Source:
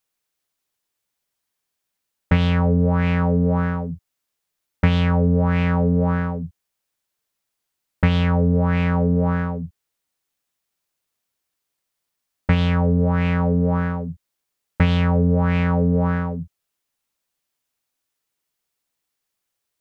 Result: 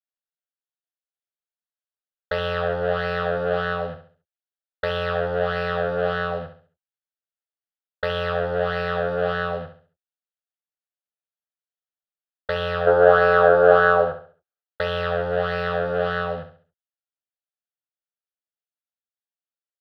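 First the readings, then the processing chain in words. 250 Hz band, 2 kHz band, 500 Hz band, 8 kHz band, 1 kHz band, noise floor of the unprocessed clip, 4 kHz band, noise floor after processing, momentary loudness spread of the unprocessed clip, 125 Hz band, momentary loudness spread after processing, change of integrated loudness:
-15.5 dB, +5.5 dB, +7.0 dB, n/a, +4.5 dB, -80 dBFS, +1.5 dB, under -85 dBFS, 12 LU, -14.5 dB, 15 LU, -2.0 dB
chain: sample leveller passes 5; three-band isolator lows -19 dB, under 330 Hz, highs -23 dB, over 3800 Hz; fixed phaser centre 1500 Hz, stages 8; spectral gain 12.87–14.61, 290–1700 Hz +10 dB; on a send: feedback echo 68 ms, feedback 35%, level -10 dB; on the sum: gain -6 dB

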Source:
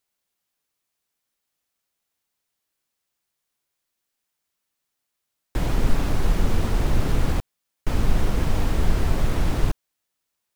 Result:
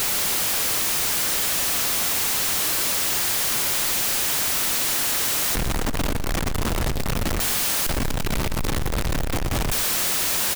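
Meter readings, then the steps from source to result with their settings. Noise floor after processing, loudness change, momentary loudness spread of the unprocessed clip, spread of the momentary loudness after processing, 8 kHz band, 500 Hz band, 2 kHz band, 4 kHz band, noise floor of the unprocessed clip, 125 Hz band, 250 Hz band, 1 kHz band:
-23 dBFS, +5.0 dB, 6 LU, 7 LU, +22.0 dB, +2.5 dB, +11.0 dB, +16.5 dB, -81 dBFS, -2.5 dB, +0.5 dB, +6.0 dB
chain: infinite clipping; feedback echo 0.117 s, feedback 41%, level -13 dB

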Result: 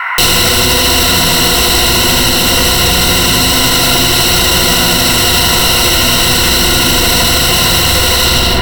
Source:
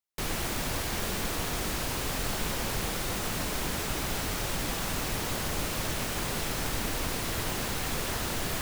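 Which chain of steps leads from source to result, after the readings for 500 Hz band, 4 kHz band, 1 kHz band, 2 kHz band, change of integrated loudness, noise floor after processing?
+20.0 dB, +28.0 dB, +21.0 dB, +22.0 dB, +23.5 dB, -10 dBFS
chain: ending faded out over 0.53 s; band shelf 3800 Hz +11.5 dB 1.1 oct; in parallel at -9 dB: sine folder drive 15 dB, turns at -17 dBFS; on the sum: band noise 860–2200 Hz -44 dBFS; ripple EQ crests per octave 2, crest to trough 13 dB; soft clip -17.5 dBFS, distortion -19 dB; on a send: darkening echo 78 ms, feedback 84%, low-pass 2000 Hz, level -4 dB; on the sum: maximiser +25.5 dB; gain -1 dB

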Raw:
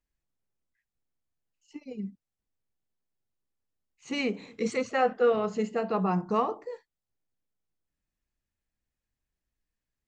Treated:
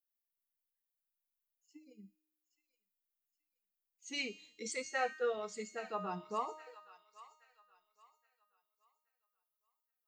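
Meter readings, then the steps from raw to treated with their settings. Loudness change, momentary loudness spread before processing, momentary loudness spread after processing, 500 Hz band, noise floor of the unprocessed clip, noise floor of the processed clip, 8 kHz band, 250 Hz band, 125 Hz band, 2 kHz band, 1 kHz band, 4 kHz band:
-10.5 dB, 17 LU, 22 LU, -12.5 dB, under -85 dBFS, under -85 dBFS, +1.5 dB, -18.0 dB, -18.5 dB, -5.5 dB, -10.0 dB, -4.0 dB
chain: per-bin expansion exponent 1.5; RIAA curve recording; resonator 310 Hz, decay 0.88 s, mix 80%; thin delay 0.823 s, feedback 31%, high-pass 1400 Hz, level -12 dB; gain +5.5 dB

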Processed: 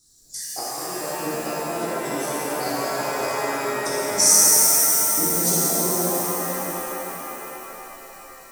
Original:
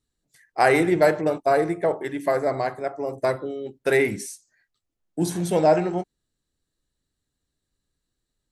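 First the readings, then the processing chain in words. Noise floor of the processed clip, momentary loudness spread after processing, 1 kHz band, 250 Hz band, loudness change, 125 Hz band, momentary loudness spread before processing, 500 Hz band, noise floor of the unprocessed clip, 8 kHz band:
-44 dBFS, 20 LU, -0.5 dB, -3.0 dB, +3.5 dB, -3.5 dB, 14 LU, -5.0 dB, -82 dBFS, +23.0 dB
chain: flipped gate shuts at -13 dBFS, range -24 dB; compressor 2.5:1, threshold -46 dBFS, peak gain reduction 17.5 dB; resonant high shelf 3800 Hz +14 dB, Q 3; shimmer reverb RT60 3.9 s, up +7 st, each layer -2 dB, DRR -9.5 dB; gain +6 dB

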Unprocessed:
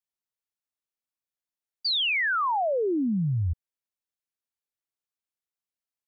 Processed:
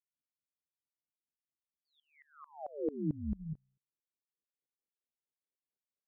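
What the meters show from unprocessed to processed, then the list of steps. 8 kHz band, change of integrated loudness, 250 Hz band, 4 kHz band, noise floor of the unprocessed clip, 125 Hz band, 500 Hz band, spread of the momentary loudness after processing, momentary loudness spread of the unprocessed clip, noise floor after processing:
n/a, -14.0 dB, -10.0 dB, under -40 dB, under -85 dBFS, -14.0 dB, -13.0 dB, 17 LU, 8 LU, under -85 dBFS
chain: low-pass sweep 210 Hz -> 440 Hz, 1.34–4.65; notches 60/120 Hz; compressor 3:1, threshold -31 dBFS, peak gain reduction 10.5 dB; ring modulator 74 Hz; HPF 59 Hz 12 dB/oct; dB-ramp tremolo swelling 4.5 Hz, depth 24 dB; gain +4.5 dB

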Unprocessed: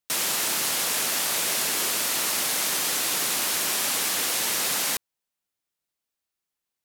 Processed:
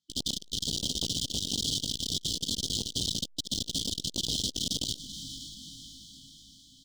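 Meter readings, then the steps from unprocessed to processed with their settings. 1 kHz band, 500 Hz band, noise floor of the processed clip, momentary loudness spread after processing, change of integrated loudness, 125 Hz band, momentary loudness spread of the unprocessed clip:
under -25 dB, -11.0 dB, -55 dBFS, 15 LU, -8.0 dB, +9.0 dB, 0 LU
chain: HPF 62 Hz 12 dB/oct; high shelf 2400 Hz +6.5 dB; hard clip -9.5 dBFS, distortion -44 dB; painted sound rise, 0.76–1.61, 210–4400 Hz -27 dBFS; wrapped overs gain 17.5 dB; brick-wall FIR band-stop 310–3000 Hz; air absorption 140 m; doubler 19 ms -2 dB; diffused feedback echo 0.488 s, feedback 53%, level -15 dB; core saturation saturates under 920 Hz; gain +5.5 dB

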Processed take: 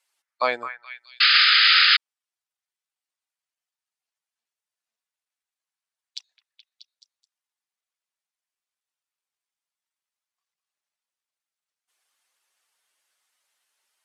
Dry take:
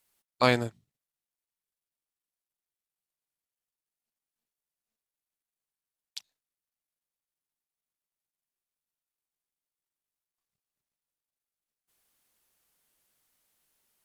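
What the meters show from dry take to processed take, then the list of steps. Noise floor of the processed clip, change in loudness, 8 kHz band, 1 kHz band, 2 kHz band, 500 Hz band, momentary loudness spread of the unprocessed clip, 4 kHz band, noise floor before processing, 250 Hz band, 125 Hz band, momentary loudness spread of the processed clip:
under -85 dBFS, +11.0 dB, -5.0 dB, +7.5 dB, +17.0 dB, n/a, 20 LU, +23.0 dB, under -85 dBFS, under -10 dB, under -25 dB, 15 LU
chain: spectral contrast raised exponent 1.6; BPF 790–7500 Hz; on a send: delay with a stepping band-pass 0.213 s, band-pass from 1500 Hz, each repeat 0.7 oct, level -7 dB; on the sum: painted sound noise, 1.2–1.97, 1200–5100 Hz -21 dBFS; gain +5 dB

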